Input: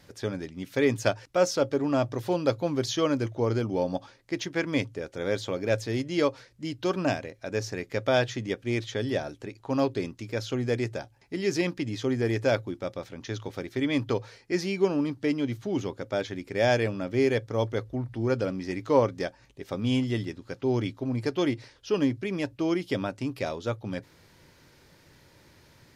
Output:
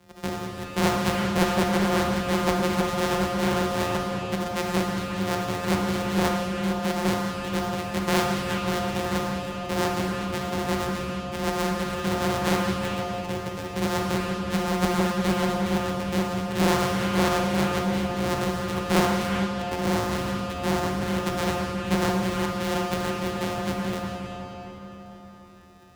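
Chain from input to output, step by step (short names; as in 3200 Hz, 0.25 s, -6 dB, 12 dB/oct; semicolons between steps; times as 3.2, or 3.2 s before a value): sample sorter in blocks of 256 samples; frequency shift +21 Hz; digital reverb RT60 4.7 s, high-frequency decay 0.75×, pre-delay 0 ms, DRR -2.5 dB; Doppler distortion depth 0.6 ms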